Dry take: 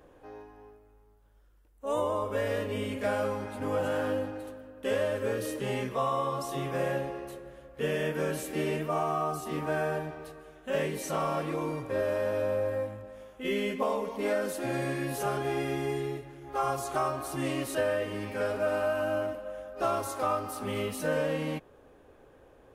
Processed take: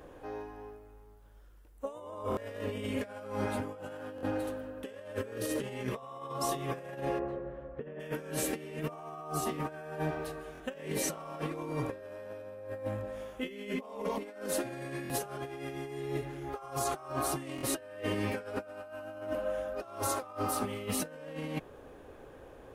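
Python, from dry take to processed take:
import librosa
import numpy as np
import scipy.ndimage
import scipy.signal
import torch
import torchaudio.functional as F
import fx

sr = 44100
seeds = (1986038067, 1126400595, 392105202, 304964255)

y = fx.over_compress(x, sr, threshold_db=-36.0, ratio=-0.5)
y = fx.lowpass(y, sr, hz=1300.0, slope=12, at=(7.18, 7.99), fade=0.02)
y = fx.buffer_glitch(y, sr, at_s=(2.3, 4.16, 10.53, 15.03, 17.56), block=1024, repeats=2)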